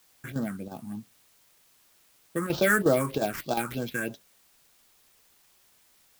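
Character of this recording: aliases and images of a low sample rate 9.3 kHz, jitter 20%; phasing stages 4, 3.2 Hz, lowest notch 630–2100 Hz; chopped level 2.8 Hz, depth 60%, duty 90%; a quantiser's noise floor 12-bit, dither triangular

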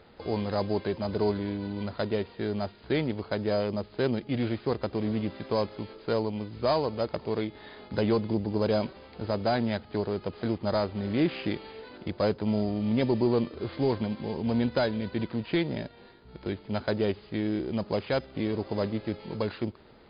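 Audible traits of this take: a buzz of ramps at a fixed pitch in blocks of 8 samples; MP3

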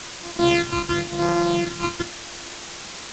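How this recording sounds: a buzz of ramps at a fixed pitch in blocks of 128 samples; phasing stages 12, 0.94 Hz, lowest notch 570–3200 Hz; a quantiser's noise floor 6-bit, dither triangular; G.722

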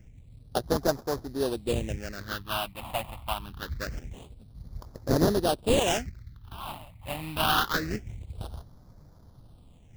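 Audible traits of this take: aliases and images of a low sample rate 2.2 kHz, jitter 20%; phasing stages 6, 0.25 Hz, lowest notch 410–2700 Hz

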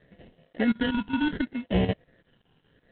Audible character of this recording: chopped level 5.3 Hz, depth 65%, duty 80%; aliases and images of a low sample rate 1.2 kHz, jitter 0%; phasing stages 8, 0.7 Hz, lowest notch 580–1300 Hz; G.726

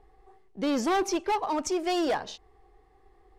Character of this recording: noise floor -61 dBFS; spectral tilt -3.0 dB/octave

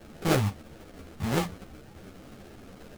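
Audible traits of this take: a quantiser's noise floor 8-bit, dither triangular; phasing stages 4, 3.8 Hz, lowest notch 390–1000 Hz; aliases and images of a low sample rate 1 kHz, jitter 20%; a shimmering, thickened sound

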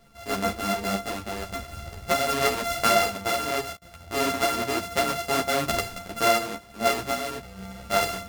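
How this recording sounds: a buzz of ramps at a fixed pitch in blocks of 64 samples; random-step tremolo; a shimmering, thickened sound

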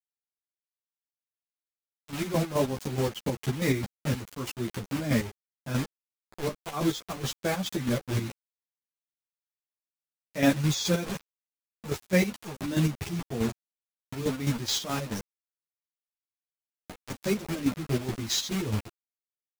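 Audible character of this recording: a quantiser's noise floor 6-bit, dither none; chopped level 4.7 Hz, depth 60%, duty 45%; a shimmering, thickened sound

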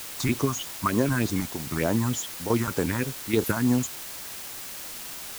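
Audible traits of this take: chopped level 1.2 Hz, depth 65%, duty 75%; phasing stages 4, 3.3 Hz, lowest notch 440–2900 Hz; a quantiser's noise floor 6-bit, dither triangular

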